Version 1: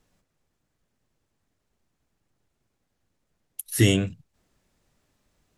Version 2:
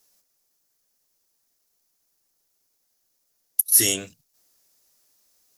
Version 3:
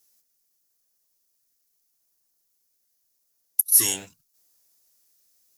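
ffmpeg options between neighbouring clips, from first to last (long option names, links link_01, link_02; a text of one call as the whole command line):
ffmpeg -i in.wav -af "bass=frequency=250:gain=-15,treble=frequency=4000:gain=14,aexciter=amount=2.1:drive=1.4:freq=4600,volume=-3.5dB" out.wav
ffmpeg -i in.wav -filter_complex "[0:a]highshelf=frequency=6100:gain=7,acrossover=split=1000[link_01][link_02];[link_01]acrusher=samples=21:mix=1:aa=0.000001:lfo=1:lforange=33.6:lforate=0.81[link_03];[link_03][link_02]amix=inputs=2:normalize=0,volume=-6dB" out.wav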